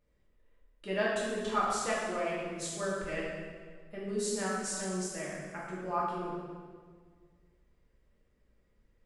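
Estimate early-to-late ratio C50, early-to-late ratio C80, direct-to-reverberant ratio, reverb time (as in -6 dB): -0.5 dB, 1.5 dB, -6.5 dB, 1.8 s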